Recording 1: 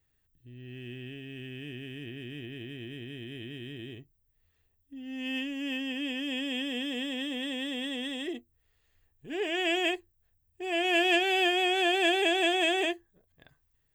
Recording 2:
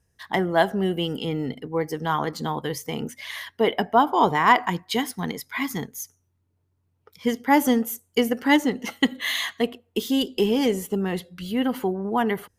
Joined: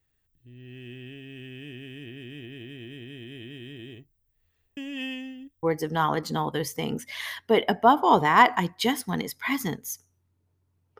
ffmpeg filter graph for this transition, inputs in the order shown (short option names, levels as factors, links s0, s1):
-filter_complex "[0:a]apad=whole_dur=10.99,atrim=end=10.99,asplit=2[s0][s1];[s0]atrim=end=4.772[s2];[s1]atrim=start=4.768:end=5.632,asetpts=PTS-STARTPTS,areverse[s3];[1:a]atrim=start=1.728:end=7.09[s4];[s2][s3]acrossfade=d=0.004:c1=hsin:c2=hsin[s5];[s5][s4]acrossfade=d=0.004:c1=hsin:c2=hsin"